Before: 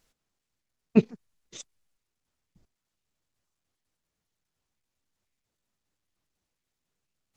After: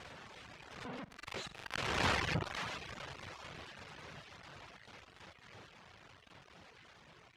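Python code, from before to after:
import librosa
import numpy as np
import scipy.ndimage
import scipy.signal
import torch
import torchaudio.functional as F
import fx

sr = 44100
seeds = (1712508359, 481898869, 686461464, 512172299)

p1 = np.sign(x) * np.sqrt(np.mean(np.square(x)))
p2 = fx.doppler_pass(p1, sr, speed_mps=35, closest_m=6.5, pass_at_s=2.1)
p3 = fx.peak_eq(p2, sr, hz=260.0, db=-7.0, octaves=1.2)
p4 = p3 + fx.room_flutter(p3, sr, wall_m=7.6, rt60_s=0.21, dry=0)
p5 = fx.dereverb_blind(p4, sr, rt60_s=0.73)
p6 = fx.bandpass_edges(p5, sr, low_hz=100.0, high_hz=2700.0)
p7 = fx.pre_swell(p6, sr, db_per_s=60.0)
y = p7 * 10.0 ** (14.5 / 20.0)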